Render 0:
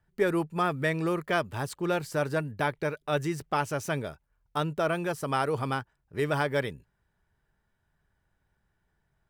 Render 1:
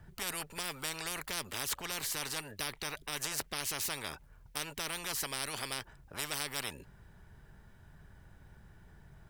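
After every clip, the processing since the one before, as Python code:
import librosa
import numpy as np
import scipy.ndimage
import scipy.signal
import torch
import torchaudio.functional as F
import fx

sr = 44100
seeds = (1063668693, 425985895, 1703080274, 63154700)

y = fx.low_shelf(x, sr, hz=300.0, db=7.5)
y = fx.spectral_comp(y, sr, ratio=10.0)
y = y * 10.0 ** (-6.5 / 20.0)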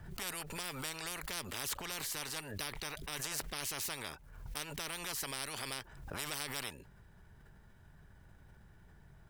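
y = fx.pre_swell(x, sr, db_per_s=54.0)
y = y * 10.0 ** (-3.5 / 20.0)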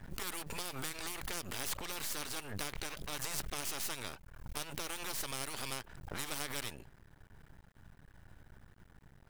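y = np.maximum(x, 0.0)
y = y * 10.0 ** (4.5 / 20.0)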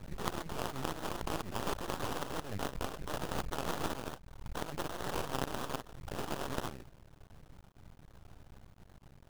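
y = fx.sample_hold(x, sr, seeds[0], rate_hz=2200.0, jitter_pct=20)
y = fx.record_warp(y, sr, rpm=78.0, depth_cents=160.0)
y = y * 10.0 ** (2.5 / 20.0)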